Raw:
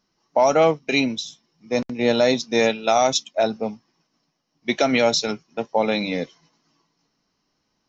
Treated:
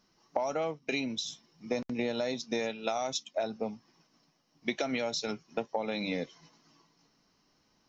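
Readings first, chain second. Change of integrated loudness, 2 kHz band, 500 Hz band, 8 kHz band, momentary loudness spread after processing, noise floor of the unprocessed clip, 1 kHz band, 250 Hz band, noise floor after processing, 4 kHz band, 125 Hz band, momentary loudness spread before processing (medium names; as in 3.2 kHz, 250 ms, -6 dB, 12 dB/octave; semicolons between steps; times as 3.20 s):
-13.0 dB, -12.0 dB, -13.5 dB, no reading, 7 LU, -74 dBFS, -14.5 dB, -11.5 dB, -72 dBFS, -11.5 dB, -12.0 dB, 12 LU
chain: compression 12:1, threshold -31 dBFS, peak gain reduction 19 dB; trim +2 dB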